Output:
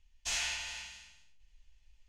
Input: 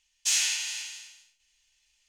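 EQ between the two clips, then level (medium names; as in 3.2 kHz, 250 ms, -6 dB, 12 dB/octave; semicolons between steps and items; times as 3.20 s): dynamic bell 700 Hz, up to +4 dB, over -48 dBFS, Q 0.72; tilt EQ -4.5 dB/octave; 0.0 dB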